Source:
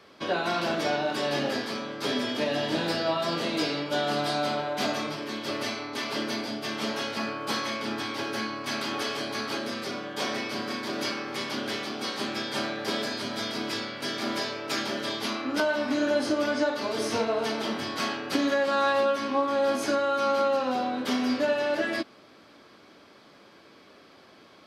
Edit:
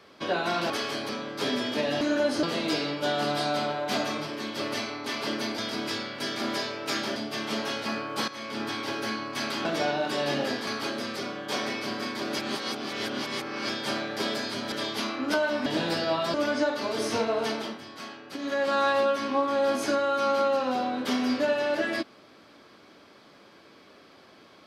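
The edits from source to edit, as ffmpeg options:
-filter_complex "[0:a]asplit=17[a][b][c][d][e][f][g][h][i][j][k][l][m][n][o][p][q];[a]atrim=end=0.702[r];[b]atrim=start=8.958:end=9.352[s];[c]atrim=start=1.718:end=2.642[t];[d]atrim=start=15.918:end=16.342[u];[e]atrim=start=3.318:end=6.472[v];[f]atrim=start=13.398:end=14.982[w];[g]atrim=start=6.468:end=7.59,asetpts=PTS-STARTPTS,afade=t=out:st=1.118:d=0.004:c=hsin:silence=0.223872[x];[h]atrim=start=7.59:end=8.962,asetpts=PTS-STARTPTS,afade=t=in:d=0.37:silence=0.223872[y];[i]atrim=start=0.698:end=1.722[z];[j]atrim=start=9.348:end=11.072[aa];[k]atrim=start=11.068:end=12.372,asetpts=PTS-STARTPTS,areverse[ab];[l]atrim=start=12.368:end=13.402[ac];[m]atrim=start=14.978:end=15.922[ad];[n]atrim=start=2.638:end=3.322[ae];[o]atrim=start=16.338:end=17.79,asetpts=PTS-STARTPTS,afade=t=out:st=1.172:d=0.28:silence=0.281838[af];[p]atrim=start=17.79:end=18.39,asetpts=PTS-STARTPTS,volume=-11dB[ag];[q]atrim=start=18.39,asetpts=PTS-STARTPTS,afade=t=in:d=0.28:silence=0.281838[ah];[r][s]acrossfade=d=0.004:c1=hsin:c2=hsin[ai];[ai][t]acrossfade=d=0.004:c1=hsin:c2=hsin[aj];[aj][u]acrossfade=d=0.004:c1=hsin:c2=hsin[ak];[ak][v]acrossfade=d=0.004:c1=hsin:c2=hsin[al];[al][w]acrossfade=d=0.004:c1=hsin:c2=hsin[am];[x][y]concat=n=2:v=0:a=1[an];[am][an]acrossfade=d=0.004:c1=hsin:c2=hsin[ao];[ao][z]acrossfade=d=0.004:c1=hsin:c2=hsin[ap];[ap][aa]acrossfade=d=0.004:c1=hsin:c2=hsin[aq];[aq][ab]acrossfade=d=0.004:c1=hsin:c2=hsin[ar];[ar][ac]acrossfade=d=0.004:c1=hsin:c2=hsin[as];[as][ad]acrossfade=d=0.004:c1=hsin:c2=hsin[at];[at][ae]acrossfade=d=0.004:c1=hsin:c2=hsin[au];[af][ag][ah]concat=n=3:v=0:a=1[av];[au][av]acrossfade=d=0.004:c1=hsin:c2=hsin"

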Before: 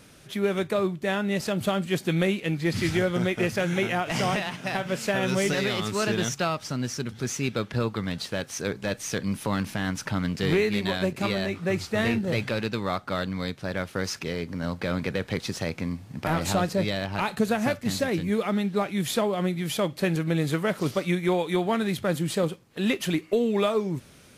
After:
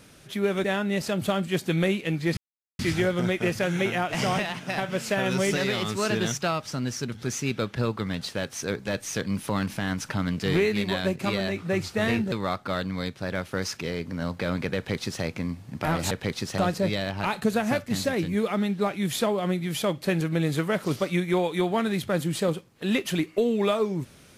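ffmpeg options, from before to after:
-filter_complex "[0:a]asplit=6[a][b][c][d][e][f];[a]atrim=end=0.642[g];[b]atrim=start=1.028:end=2.76,asetpts=PTS-STARTPTS,afade=t=out:st=1.728:d=0.004:c=hsin,apad=pad_dur=0.42[h];[c]atrim=start=2.76:end=12.292,asetpts=PTS-STARTPTS,afade=t=in:d=0.004:c=hsin[i];[d]atrim=start=12.738:end=16.532[j];[e]atrim=start=15.178:end=15.652[k];[f]atrim=start=16.528[l];[h][i]concat=n=2:v=0:a=1[m];[g][m]acrossfade=d=0.004:c1=hsin:c2=hsin[n];[n][j]acrossfade=d=0.004:c1=hsin:c2=hsin[o];[o][k]acrossfade=d=0.004:c1=hsin:c2=hsin[p];[p][l]acrossfade=d=0.004:c1=hsin:c2=hsin"

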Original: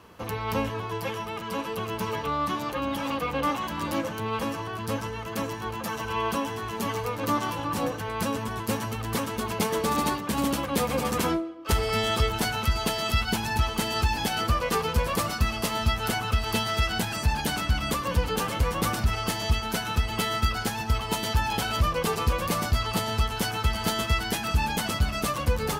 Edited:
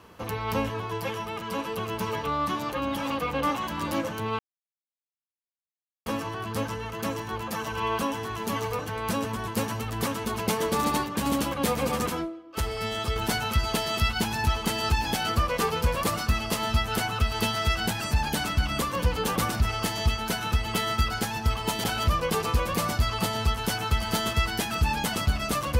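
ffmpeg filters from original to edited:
-filter_complex "[0:a]asplit=7[a][b][c][d][e][f][g];[a]atrim=end=4.39,asetpts=PTS-STARTPTS,afade=t=out:st=4.386:d=0.004:c=hsin,apad=pad_dur=1.67[h];[b]atrim=start=4.39:end=7.122,asetpts=PTS-STARTPTS,afade=t=in:d=0.004:c=hsin[i];[c]atrim=start=7.908:end=11.192[j];[d]atrim=start=11.188:end=12.282,asetpts=PTS-STARTPTS,volume=-5dB[k];[e]atrim=start=12.278:end=18.482[l];[f]atrim=start=18.798:end=21.282[m];[g]atrim=start=21.568[n];[h][i]concat=n=2:v=0:a=1[o];[o][j]acrossfade=d=0.004:c1=hsin:c2=hsin[p];[p][k]acrossfade=d=0.004:c1=hsin:c2=hsin[q];[q][l]acrossfade=d=0.004:c1=hsin:c2=hsin[r];[r][m]acrossfade=d=0.004:c1=hsin:c2=hsin[s];[s][n]acrossfade=d=0.004:c1=hsin:c2=hsin"

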